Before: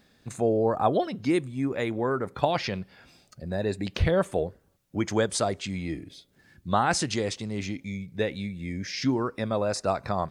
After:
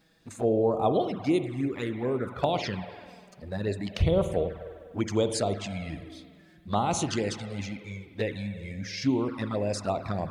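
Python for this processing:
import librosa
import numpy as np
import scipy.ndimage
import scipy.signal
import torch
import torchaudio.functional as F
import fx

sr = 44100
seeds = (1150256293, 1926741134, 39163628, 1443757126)

y = fx.rev_spring(x, sr, rt60_s=1.9, pass_ms=(49,), chirp_ms=45, drr_db=8.0)
y = fx.env_flanger(y, sr, rest_ms=6.4, full_db=-21.5)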